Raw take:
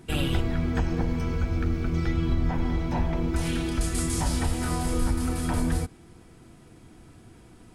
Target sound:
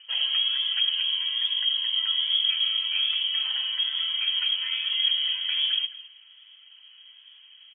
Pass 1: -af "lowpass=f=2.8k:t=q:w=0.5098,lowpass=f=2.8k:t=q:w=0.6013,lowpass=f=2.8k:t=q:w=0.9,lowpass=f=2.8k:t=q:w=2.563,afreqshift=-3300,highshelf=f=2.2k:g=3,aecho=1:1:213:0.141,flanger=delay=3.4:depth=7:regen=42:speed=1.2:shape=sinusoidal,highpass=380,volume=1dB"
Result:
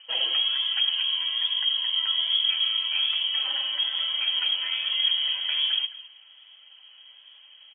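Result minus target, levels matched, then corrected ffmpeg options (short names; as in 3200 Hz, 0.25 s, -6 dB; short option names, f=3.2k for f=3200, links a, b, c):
500 Hz band +14.5 dB
-af "lowpass=f=2.8k:t=q:w=0.5098,lowpass=f=2.8k:t=q:w=0.6013,lowpass=f=2.8k:t=q:w=0.9,lowpass=f=2.8k:t=q:w=2.563,afreqshift=-3300,highshelf=f=2.2k:g=3,aecho=1:1:213:0.141,flanger=delay=3.4:depth=7:regen=42:speed=1.2:shape=sinusoidal,highpass=1.4k,volume=1dB"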